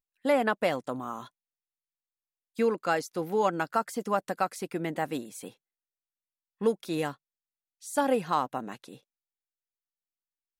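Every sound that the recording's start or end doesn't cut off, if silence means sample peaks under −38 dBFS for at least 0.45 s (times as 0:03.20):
0:02.59–0:05.48
0:06.61–0:07.12
0:07.84–0:08.94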